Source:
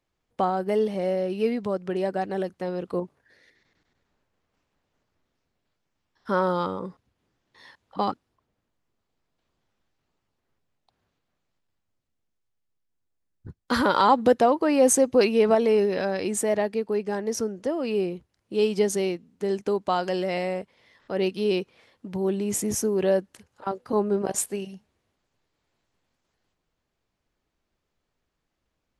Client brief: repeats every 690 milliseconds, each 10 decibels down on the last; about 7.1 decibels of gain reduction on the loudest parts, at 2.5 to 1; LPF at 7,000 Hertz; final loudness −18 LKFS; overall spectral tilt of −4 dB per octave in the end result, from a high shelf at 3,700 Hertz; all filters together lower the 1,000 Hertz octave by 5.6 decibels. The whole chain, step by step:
low-pass filter 7,000 Hz
parametric band 1,000 Hz −8.5 dB
high-shelf EQ 3,700 Hz +8.5 dB
downward compressor 2.5 to 1, threshold −26 dBFS
repeating echo 690 ms, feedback 32%, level −10 dB
level +12 dB

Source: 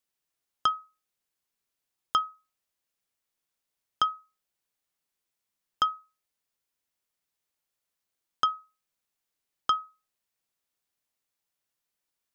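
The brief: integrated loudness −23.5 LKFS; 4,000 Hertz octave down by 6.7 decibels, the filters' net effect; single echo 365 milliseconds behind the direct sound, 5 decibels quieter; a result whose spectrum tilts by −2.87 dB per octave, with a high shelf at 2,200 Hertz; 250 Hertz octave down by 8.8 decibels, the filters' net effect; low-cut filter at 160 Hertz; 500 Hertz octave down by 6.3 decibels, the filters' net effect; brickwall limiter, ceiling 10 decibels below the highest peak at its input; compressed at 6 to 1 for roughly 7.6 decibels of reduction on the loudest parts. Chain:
high-pass filter 160 Hz
parametric band 250 Hz −9 dB
parametric band 500 Hz −5.5 dB
high-shelf EQ 2,200 Hz −6 dB
parametric band 4,000 Hz −3.5 dB
downward compressor 6 to 1, threshold −31 dBFS
brickwall limiter −26 dBFS
single-tap delay 365 ms −5 dB
level +22.5 dB

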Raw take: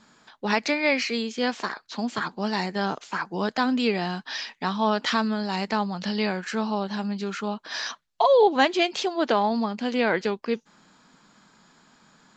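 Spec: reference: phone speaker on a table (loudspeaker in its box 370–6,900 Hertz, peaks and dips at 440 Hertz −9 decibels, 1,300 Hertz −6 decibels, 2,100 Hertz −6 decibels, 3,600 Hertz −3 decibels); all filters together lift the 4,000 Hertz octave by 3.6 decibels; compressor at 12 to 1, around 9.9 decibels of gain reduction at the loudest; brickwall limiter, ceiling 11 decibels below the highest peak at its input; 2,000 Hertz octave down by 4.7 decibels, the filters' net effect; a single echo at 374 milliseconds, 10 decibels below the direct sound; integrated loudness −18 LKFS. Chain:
parametric band 2,000 Hz −3.5 dB
parametric band 4,000 Hz +7.5 dB
downward compressor 12 to 1, threshold −24 dBFS
brickwall limiter −24 dBFS
loudspeaker in its box 370–6,900 Hz, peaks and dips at 440 Hz −9 dB, 1,300 Hz −6 dB, 2,100 Hz −6 dB, 3,600 Hz −3 dB
single-tap delay 374 ms −10 dB
level +19.5 dB

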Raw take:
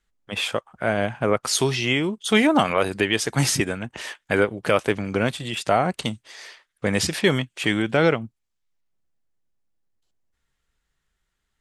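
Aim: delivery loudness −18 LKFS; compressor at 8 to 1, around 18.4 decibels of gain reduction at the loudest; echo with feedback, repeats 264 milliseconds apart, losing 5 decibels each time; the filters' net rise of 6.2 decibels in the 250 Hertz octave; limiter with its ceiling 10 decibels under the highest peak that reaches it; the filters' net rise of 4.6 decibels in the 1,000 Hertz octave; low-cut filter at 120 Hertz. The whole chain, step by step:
high-pass filter 120 Hz
parametric band 250 Hz +8 dB
parametric band 1,000 Hz +6 dB
downward compressor 8 to 1, threshold −28 dBFS
brickwall limiter −21.5 dBFS
repeating echo 264 ms, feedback 56%, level −5 dB
level +14.5 dB

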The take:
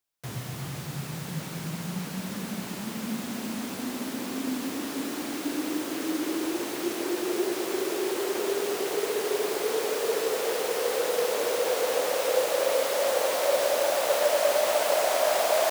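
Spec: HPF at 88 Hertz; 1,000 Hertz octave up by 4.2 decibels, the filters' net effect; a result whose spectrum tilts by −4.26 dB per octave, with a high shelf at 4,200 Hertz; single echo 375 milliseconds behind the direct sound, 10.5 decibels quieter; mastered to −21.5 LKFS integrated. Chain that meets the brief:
high-pass filter 88 Hz
parametric band 1,000 Hz +6 dB
high-shelf EQ 4,200 Hz −5 dB
single-tap delay 375 ms −10.5 dB
level +5 dB

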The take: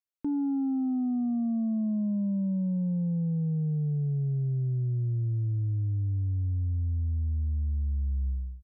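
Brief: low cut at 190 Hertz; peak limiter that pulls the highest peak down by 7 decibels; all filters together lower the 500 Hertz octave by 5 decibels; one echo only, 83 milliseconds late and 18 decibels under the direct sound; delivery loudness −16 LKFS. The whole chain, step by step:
high-pass filter 190 Hz
parametric band 500 Hz −6.5 dB
brickwall limiter −34 dBFS
single-tap delay 83 ms −18 dB
level +23.5 dB

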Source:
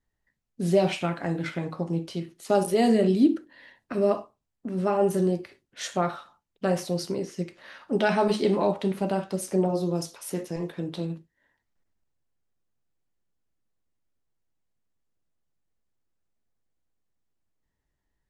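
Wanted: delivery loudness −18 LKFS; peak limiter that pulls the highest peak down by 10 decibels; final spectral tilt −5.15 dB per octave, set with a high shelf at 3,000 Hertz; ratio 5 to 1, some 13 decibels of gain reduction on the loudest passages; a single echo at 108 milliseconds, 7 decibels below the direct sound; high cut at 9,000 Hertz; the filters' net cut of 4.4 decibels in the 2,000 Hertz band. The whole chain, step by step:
low-pass filter 9,000 Hz
parametric band 2,000 Hz −8 dB
high-shelf EQ 3,000 Hz +4.5 dB
downward compressor 5 to 1, threshold −30 dBFS
brickwall limiter −29 dBFS
single-tap delay 108 ms −7 dB
level +20.5 dB

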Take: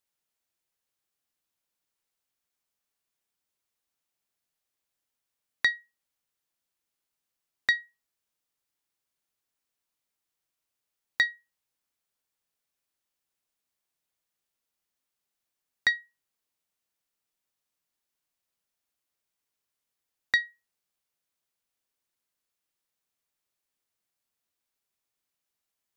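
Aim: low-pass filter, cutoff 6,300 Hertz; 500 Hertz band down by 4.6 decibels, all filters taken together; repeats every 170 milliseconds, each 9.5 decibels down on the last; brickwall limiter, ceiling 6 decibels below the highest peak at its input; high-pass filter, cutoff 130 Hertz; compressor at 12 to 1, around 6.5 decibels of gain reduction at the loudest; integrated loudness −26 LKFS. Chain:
high-pass filter 130 Hz
low-pass filter 6,300 Hz
parametric band 500 Hz −6 dB
downward compressor 12 to 1, threshold −25 dBFS
brickwall limiter −19 dBFS
repeating echo 170 ms, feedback 33%, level −9.5 dB
level +12.5 dB

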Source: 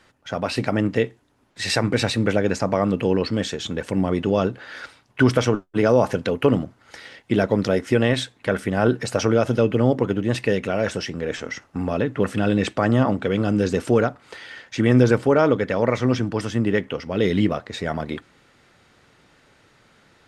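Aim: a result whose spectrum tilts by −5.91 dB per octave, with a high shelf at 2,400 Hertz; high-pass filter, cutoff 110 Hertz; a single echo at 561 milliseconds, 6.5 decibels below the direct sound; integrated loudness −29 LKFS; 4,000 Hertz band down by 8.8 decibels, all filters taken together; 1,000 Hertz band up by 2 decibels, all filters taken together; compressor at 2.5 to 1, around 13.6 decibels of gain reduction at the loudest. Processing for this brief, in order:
high-pass filter 110 Hz
parametric band 1,000 Hz +4 dB
high-shelf EQ 2,400 Hz −4 dB
parametric band 4,000 Hz −8 dB
downward compressor 2.5 to 1, threshold −33 dBFS
single-tap delay 561 ms −6.5 dB
level +3.5 dB

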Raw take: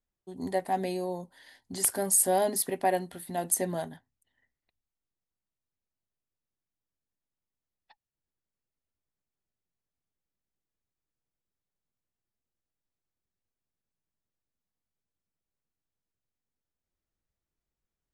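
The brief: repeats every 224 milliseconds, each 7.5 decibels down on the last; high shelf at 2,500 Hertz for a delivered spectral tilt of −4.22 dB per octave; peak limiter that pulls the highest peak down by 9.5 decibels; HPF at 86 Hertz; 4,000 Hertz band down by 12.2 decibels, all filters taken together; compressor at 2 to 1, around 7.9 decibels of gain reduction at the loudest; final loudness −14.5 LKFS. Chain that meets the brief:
high-pass filter 86 Hz
high-shelf EQ 2,500 Hz −8.5 dB
parametric band 4,000 Hz −8 dB
downward compressor 2 to 1, threshold −37 dBFS
brickwall limiter −31.5 dBFS
repeating echo 224 ms, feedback 42%, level −7.5 dB
level +27.5 dB

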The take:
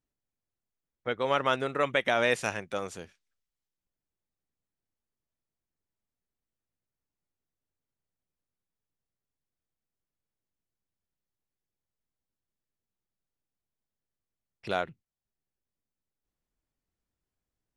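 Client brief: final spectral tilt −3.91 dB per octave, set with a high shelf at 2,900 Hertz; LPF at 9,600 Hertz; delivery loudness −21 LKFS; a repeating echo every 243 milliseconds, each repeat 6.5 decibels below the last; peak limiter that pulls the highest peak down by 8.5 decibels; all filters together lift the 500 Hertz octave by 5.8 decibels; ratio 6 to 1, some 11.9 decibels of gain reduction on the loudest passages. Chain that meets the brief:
low-pass filter 9,600 Hz
parametric band 500 Hz +7 dB
high-shelf EQ 2,900 Hz −5 dB
downward compressor 6 to 1, threshold −31 dBFS
brickwall limiter −28 dBFS
repeating echo 243 ms, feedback 47%, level −6.5 dB
level +19.5 dB

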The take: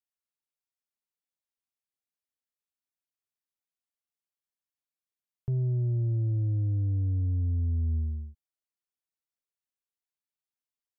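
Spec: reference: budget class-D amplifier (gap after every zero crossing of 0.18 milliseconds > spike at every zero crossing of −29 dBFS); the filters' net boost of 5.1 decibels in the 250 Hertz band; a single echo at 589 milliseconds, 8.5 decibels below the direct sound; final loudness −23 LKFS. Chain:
parametric band 250 Hz +7.5 dB
single-tap delay 589 ms −8.5 dB
gap after every zero crossing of 0.18 ms
spike at every zero crossing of −29 dBFS
level +5 dB

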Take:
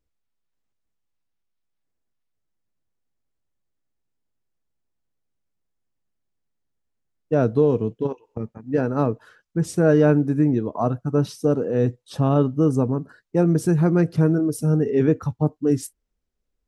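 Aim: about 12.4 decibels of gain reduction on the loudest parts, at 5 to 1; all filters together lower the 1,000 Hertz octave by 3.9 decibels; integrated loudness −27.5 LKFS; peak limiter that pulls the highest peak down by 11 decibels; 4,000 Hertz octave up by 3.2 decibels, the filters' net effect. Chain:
parametric band 1,000 Hz −6 dB
parametric band 4,000 Hz +4.5 dB
downward compressor 5 to 1, threshold −28 dBFS
level +10 dB
brickwall limiter −17.5 dBFS

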